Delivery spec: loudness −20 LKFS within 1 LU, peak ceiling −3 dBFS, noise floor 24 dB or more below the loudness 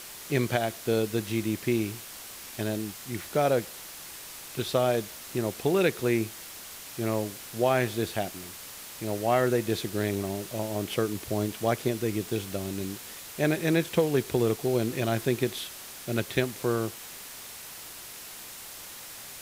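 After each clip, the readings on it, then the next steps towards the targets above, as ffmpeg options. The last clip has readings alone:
background noise floor −43 dBFS; target noise floor −53 dBFS; integrated loudness −29.0 LKFS; sample peak −11.0 dBFS; target loudness −20.0 LKFS
→ -af "afftdn=noise_reduction=10:noise_floor=-43"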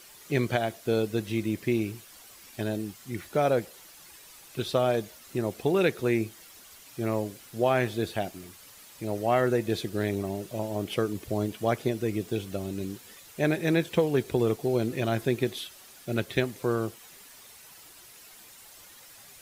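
background noise floor −51 dBFS; target noise floor −53 dBFS
→ -af "afftdn=noise_reduction=6:noise_floor=-51"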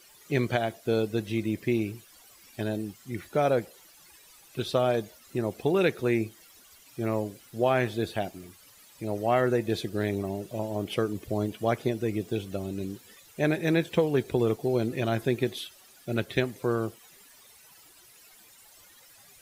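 background noise floor −55 dBFS; integrated loudness −29.0 LKFS; sample peak −11.0 dBFS; target loudness −20.0 LKFS
→ -af "volume=9dB,alimiter=limit=-3dB:level=0:latency=1"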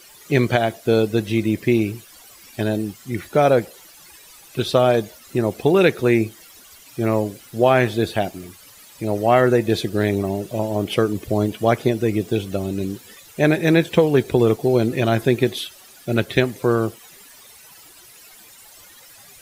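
integrated loudness −20.0 LKFS; sample peak −3.0 dBFS; background noise floor −46 dBFS

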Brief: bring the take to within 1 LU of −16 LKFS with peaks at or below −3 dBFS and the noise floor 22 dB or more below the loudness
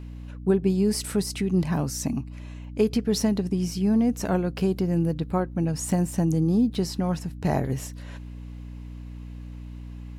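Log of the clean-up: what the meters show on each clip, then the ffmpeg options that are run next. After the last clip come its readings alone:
mains hum 60 Hz; hum harmonics up to 300 Hz; level of the hum −36 dBFS; integrated loudness −25.5 LKFS; sample peak −9.5 dBFS; target loudness −16.0 LKFS
→ -af "bandreject=frequency=60:width_type=h:width=6,bandreject=frequency=120:width_type=h:width=6,bandreject=frequency=180:width_type=h:width=6,bandreject=frequency=240:width_type=h:width=6,bandreject=frequency=300:width_type=h:width=6"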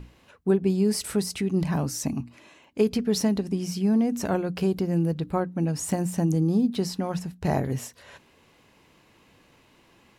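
mains hum none found; integrated loudness −26.0 LKFS; sample peak −10.0 dBFS; target loudness −16.0 LKFS
→ -af "volume=10dB,alimiter=limit=-3dB:level=0:latency=1"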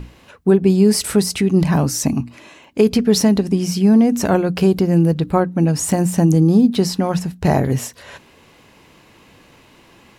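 integrated loudness −16.0 LKFS; sample peak −3.0 dBFS; background noise floor −50 dBFS

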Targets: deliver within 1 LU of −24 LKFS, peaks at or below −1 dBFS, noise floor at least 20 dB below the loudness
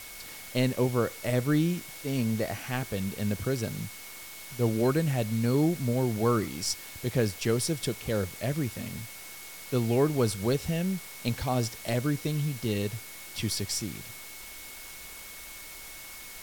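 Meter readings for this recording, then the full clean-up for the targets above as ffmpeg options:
interfering tone 2,200 Hz; level of the tone −49 dBFS; background noise floor −44 dBFS; target noise floor −50 dBFS; integrated loudness −29.5 LKFS; sample peak −13.5 dBFS; target loudness −24.0 LKFS
→ -af "bandreject=frequency=2200:width=30"
-af "afftdn=noise_reduction=6:noise_floor=-44"
-af "volume=5.5dB"

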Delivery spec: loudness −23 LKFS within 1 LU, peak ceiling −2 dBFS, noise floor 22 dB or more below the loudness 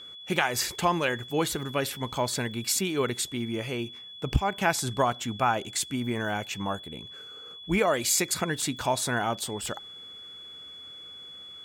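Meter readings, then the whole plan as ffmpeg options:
interfering tone 3,400 Hz; level of the tone −42 dBFS; integrated loudness −28.0 LKFS; sample peak −9.5 dBFS; target loudness −23.0 LKFS
→ -af "bandreject=frequency=3400:width=30"
-af "volume=5dB"

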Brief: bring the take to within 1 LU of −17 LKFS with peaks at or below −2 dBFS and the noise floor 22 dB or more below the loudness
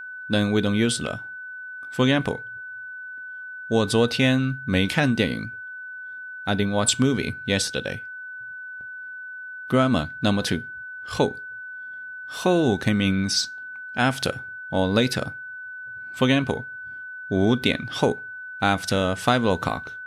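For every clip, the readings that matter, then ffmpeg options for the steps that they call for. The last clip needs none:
interfering tone 1,500 Hz; level of the tone −34 dBFS; integrated loudness −23.5 LKFS; sample peak −5.0 dBFS; target loudness −17.0 LKFS
→ -af "bandreject=frequency=1500:width=30"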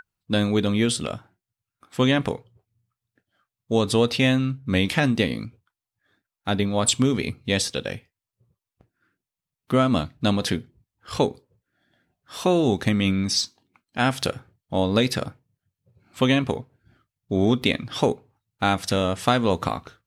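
interfering tone none found; integrated loudness −23.5 LKFS; sample peak −5.5 dBFS; target loudness −17.0 LKFS
→ -af "volume=6.5dB,alimiter=limit=-2dB:level=0:latency=1"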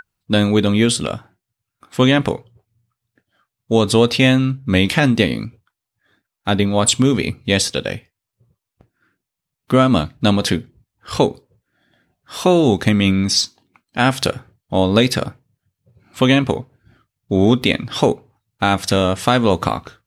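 integrated loudness −17.0 LKFS; sample peak −2.0 dBFS; background noise floor −83 dBFS

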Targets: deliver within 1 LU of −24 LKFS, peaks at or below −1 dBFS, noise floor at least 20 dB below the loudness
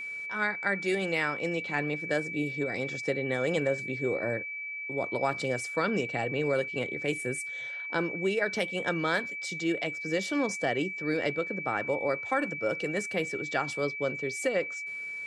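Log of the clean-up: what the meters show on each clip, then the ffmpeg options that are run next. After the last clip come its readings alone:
interfering tone 2,300 Hz; level of the tone −35 dBFS; integrated loudness −30.5 LKFS; sample peak −13.0 dBFS; target loudness −24.0 LKFS
→ -af "bandreject=frequency=2300:width=30"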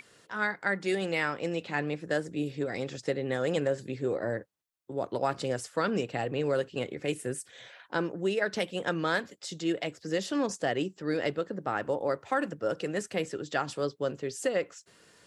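interfering tone none found; integrated loudness −32.0 LKFS; sample peak −14.0 dBFS; target loudness −24.0 LKFS
→ -af "volume=8dB"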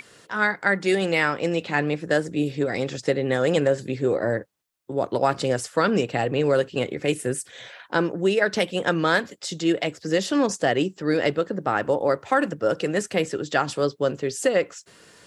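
integrated loudness −24.0 LKFS; sample peak −6.0 dBFS; background noise floor −55 dBFS

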